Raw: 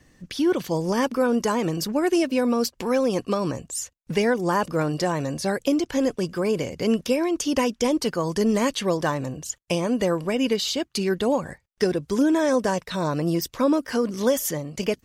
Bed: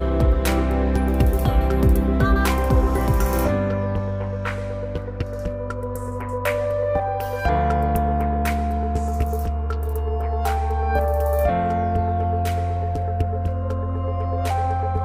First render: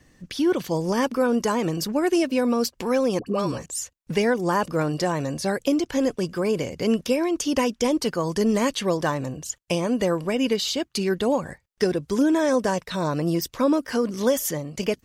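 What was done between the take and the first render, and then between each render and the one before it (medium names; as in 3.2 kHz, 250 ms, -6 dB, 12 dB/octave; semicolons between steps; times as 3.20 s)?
3.19–3.66 s: phase dispersion highs, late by 75 ms, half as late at 900 Hz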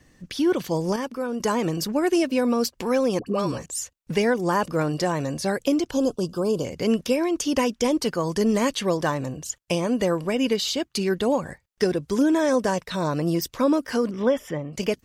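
0.96–1.40 s: gain -7 dB; 5.91–6.65 s: Butterworth band-stop 2 kHz, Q 1.1; 14.11–14.73 s: Savitzky-Golay filter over 25 samples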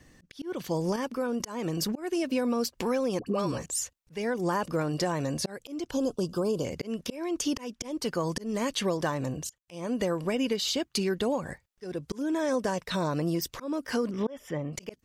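slow attack 408 ms; compression 3:1, threshold -26 dBFS, peak gain reduction 7 dB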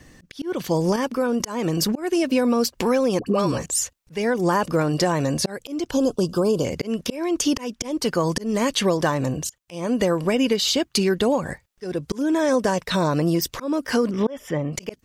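trim +8 dB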